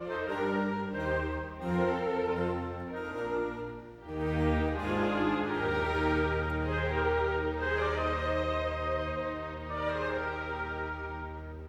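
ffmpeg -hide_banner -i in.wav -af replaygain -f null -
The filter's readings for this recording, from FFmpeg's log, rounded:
track_gain = +13.9 dB
track_peak = 0.105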